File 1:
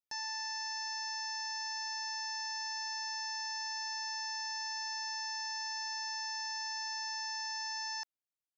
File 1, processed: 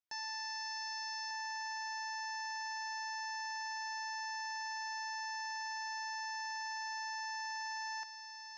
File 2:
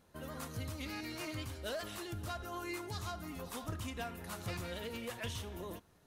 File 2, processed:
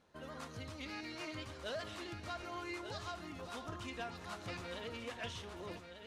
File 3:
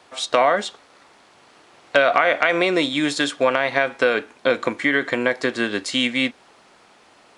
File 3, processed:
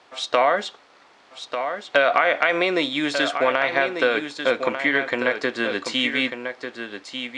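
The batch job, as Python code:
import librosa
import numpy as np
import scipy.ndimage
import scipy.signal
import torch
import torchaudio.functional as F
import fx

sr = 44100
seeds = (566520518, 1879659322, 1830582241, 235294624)

p1 = scipy.signal.sosfilt(scipy.signal.butter(2, 5700.0, 'lowpass', fs=sr, output='sos'), x)
p2 = fx.low_shelf(p1, sr, hz=200.0, db=-8.0)
p3 = p2 + fx.echo_single(p2, sr, ms=1194, db=-8.0, dry=0)
y = p3 * 10.0 ** (-1.0 / 20.0)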